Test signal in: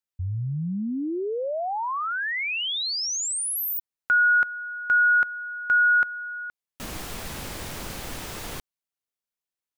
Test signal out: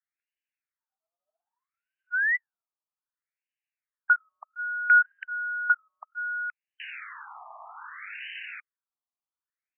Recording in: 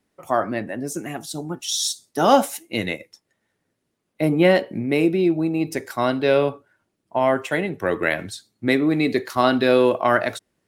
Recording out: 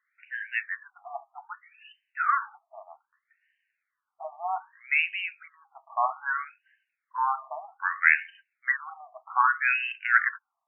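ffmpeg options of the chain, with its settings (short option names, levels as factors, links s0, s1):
-af "crystalizer=i=9:c=0,afftfilt=real='re*between(b*sr/1024,870*pow(2200/870,0.5+0.5*sin(2*PI*0.63*pts/sr))/1.41,870*pow(2200/870,0.5+0.5*sin(2*PI*0.63*pts/sr))*1.41)':imag='im*between(b*sr/1024,870*pow(2200/870,0.5+0.5*sin(2*PI*0.63*pts/sr))/1.41,870*pow(2200/870,0.5+0.5*sin(2*PI*0.63*pts/sr))*1.41)':win_size=1024:overlap=0.75,volume=0.631"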